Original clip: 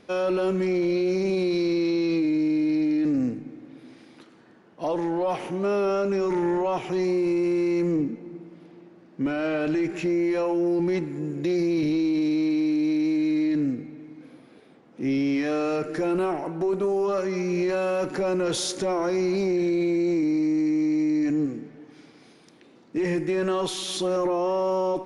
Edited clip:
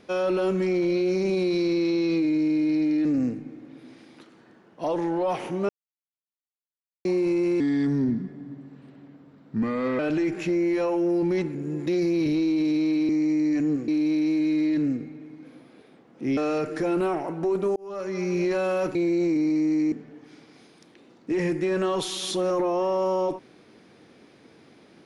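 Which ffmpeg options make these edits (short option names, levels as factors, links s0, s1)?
-filter_complex "[0:a]asplit=13[s0][s1][s2][s3][s4][s5][s6][s7][s8][s9][s10][s11][s12];[s0]atrim=end=5.69,asetpts=PTS-STARTPTS,afade=t=out:st=5.686:d=0.004:c=hsin[s13];[s1]atrim=start=5.69:end=7.05,asetpts=PTS-STARTPTS,volume=0[s14];[s2]atrim=start=7.05:end=7.604,asetpts=PTS-STARTPTS,afade=t=in:d=0.004:c=hsin[s15];[s3]atrim=start=7.6:end=9.56,asetpts=PTS-STARTPTS,asetrate=36162,aresample=44100[s16];[s4]atrim=start=9.556:end=11.122[s17];[s5]atrim=start=11.118:end=11.432,asetpts=PTS-STARTPTS,areverse[s18];[s6]atrim=start=11.428:end=12.662[s19];[s7]atrim=start=20.788:end=21.582[s20];[s8]atrim=start=12.658:end=15.152[s21];[s9]atrim=start=15.548:end=16.94,asetpts=PTS-STARTPTS,afade=t=out:st=1.388:d=0.004:c=hsin[s22];[s10]atrim=start=16.94:end=18.132,asetpts=PTS-STARTPTS,afade=t=in:d=0.5[s23];[s11]atrim=start=19.818:end=20.792[s24];[s12]atrim=start=21.578[s25];[s13][s14][s15]concat=n=3:v=0:a=1[s26];[s26][s16]acrossfade=d=0.004:c1=hsin:c2=hsin[s27];[s27][s17]acrossfade=d=0.004:c1=hsin:c2=hsin[s28];[s28][s18]acrossfade=d=0.004:c1=hsin:c2=hsin[s29];[s29][s19]acrossfade=d=0.004:c1=hsin:c2=hsin[s30];[s30][s20]acrossfade=d=0.004:c1=hsin:c2=hsin[s31];[s31][s21]acrossfade=d=0.004:c1=hsin:c2=hsin[s32];[s22][s23]concat=n=2:v=0:a=1[s33];[s32][s33]acrossfade=d=0.004:c1=hsin:c2=hsin[s34];[s34][s24]acrossfade=d=0.004:c1=hsin:c2=hsin[s35];[s35][s25]acrossfade=d=0.004:c1=hsin:c2=hsin"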